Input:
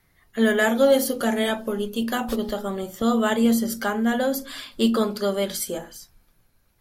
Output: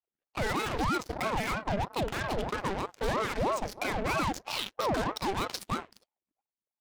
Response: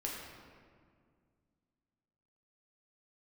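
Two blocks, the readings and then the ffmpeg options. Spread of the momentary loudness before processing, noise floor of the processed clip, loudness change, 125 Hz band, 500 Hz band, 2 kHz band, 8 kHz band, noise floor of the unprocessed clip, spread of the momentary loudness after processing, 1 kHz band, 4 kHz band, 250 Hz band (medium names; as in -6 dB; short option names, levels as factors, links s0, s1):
11 LU, under -85 dBFS, -9.0 dB, +0.5 dB, -11.0 dB, -6.5 dB, -10.0 dB, -64 dBFS, 4 LU, -1.5 dB, -6.0 dB, -14.0 dB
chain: -filter_complex "[0:a]afftfilt=real='re*pow(10,14/40*sin(2*PI*(0.75*log(max(b,1)*sr/1024/100)/log(2)-(-2.7)*(pts-256)/sr)))':imag='im*pow(10,14/40*sin(2*PI*(0.75*log(max(b,1)*sr/1024/100)/log(2)-(-2.7)*(pts-256)/sr)))':win_size=1024:overlap=0.75,lowshelf=f=420:g=-7.5,asplit=2[s0][s1];[s1]acompressor=threshold=0.0316:ratio=8,volume=1.12[s2];[s0][s2]amix=inputs=2:normalize=0,alimiter=limit=0.168:level=0:latency=1:release=71,asoftclip=type=tanh:threshold=0.133,adynamicsmooth=sensitivity=5:basefreq=1400,aeval=exprs='0.112*(cos(1*acos(clip(val(0)/0.112,-1,1)))-cos(1*PI/2))+0.00562*(cos(4*acos(clip(val(0)/0.112,-1,1)))-cos(4*PI/2))+0.00224*(cos(5*acos(clip(val(0)/0.112,-1,1)))-cos(5*PI/2))+0.0126*(cos(6*acos(clip(val(0)/0.112,-1,1)))-cos(6*PI/2))+0.0178*(cos(7*acos(clip(val(0)/0.112,-1,1)))-cos(7*PI/2))':c=same,equalizer=f=890:w=4.1:g=-7.5,aeval=exprs='val(0)*sin(2*PI*540*n/s+540*0.65/3.1*sin(2*PI*3.1*n/s))':c=same,volume=0.841"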